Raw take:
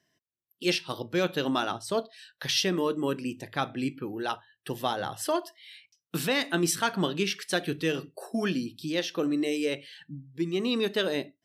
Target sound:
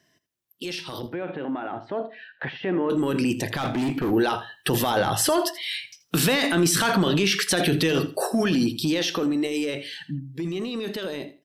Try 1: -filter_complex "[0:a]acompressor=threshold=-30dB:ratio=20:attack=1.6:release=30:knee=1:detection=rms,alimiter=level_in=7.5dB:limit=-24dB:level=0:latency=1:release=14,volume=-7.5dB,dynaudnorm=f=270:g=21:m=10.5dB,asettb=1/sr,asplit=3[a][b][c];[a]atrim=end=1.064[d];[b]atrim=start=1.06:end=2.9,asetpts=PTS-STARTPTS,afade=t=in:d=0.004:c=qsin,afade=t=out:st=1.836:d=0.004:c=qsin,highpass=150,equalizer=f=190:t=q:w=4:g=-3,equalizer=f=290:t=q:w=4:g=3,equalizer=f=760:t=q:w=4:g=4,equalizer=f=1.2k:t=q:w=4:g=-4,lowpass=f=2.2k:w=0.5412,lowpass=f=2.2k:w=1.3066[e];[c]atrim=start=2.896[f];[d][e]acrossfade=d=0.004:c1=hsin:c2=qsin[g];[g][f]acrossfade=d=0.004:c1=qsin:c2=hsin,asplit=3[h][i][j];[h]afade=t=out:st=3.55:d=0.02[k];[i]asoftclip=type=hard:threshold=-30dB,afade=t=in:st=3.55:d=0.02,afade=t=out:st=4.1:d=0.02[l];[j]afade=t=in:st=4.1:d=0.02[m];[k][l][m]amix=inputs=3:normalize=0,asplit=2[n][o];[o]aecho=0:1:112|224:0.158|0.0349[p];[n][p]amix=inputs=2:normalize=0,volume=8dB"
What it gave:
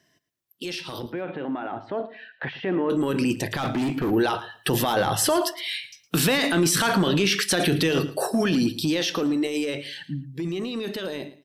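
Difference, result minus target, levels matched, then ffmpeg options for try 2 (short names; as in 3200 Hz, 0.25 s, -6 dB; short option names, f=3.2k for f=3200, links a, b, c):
echo 31 ms late
-filter_complex "[0:a]acompressor=threshold=-30dB:ratio=20:attack=1.6:release=30:knee=1:detection=rms,alimiter=level_in=7.5dB:limit=-24dB:level=0:latency=1:release=14,volume=-7.5dB,dynaudnorm=f=270:g=21:m=10.5dB,asettb=1/sr,asplit=3[a][b][c];[a]atrim=end=1.064[d];[b]atrim=start=1.06:end=2.9,asetpts=PTS-STARTPTS,afade=t=in:d=0.004:c=qsin,afade=t=out:st=1.836:d=0.004:c=qsin,highpass=150,equalizer=f=190:t=q:w=4:g=-3,equalizer=f=290:t=q:w=4:g=3,equalizer=f=760:t=q:w=4:g=4,equalizer=f=1.2k:t=q:w=4:g=-4,lowpass=f=2.2k:w=0.5412,lowpass=f=2.2k:w=1.3066[e];[c]atrim=start=2.896[f];[d][e]acrossfade=d=0.004:c1=hsin:c2=qsin[g];[g][f]acrossfade=d=0.004:c1=qsin:c2=hsin,asplit=3[h][i][j];[h]afade=t=out:st=3.55:d=0.02[k];[i]asoftclip=type=hard:threshold=-30dB,afade=t=in:st=3.55:d=0.02,afade=t=out:st=4.1:d=0.02[l];[j]afade=t=in:st=4.1:d=0.02[m];[k][l][m]amix=inputs=3:normalize=0,asplit=2[n][o];[o]aecho=0:1:81|162:0.158|0.0349[p];[n][p]amix=inputs=2:normalize=0,volume=8dB"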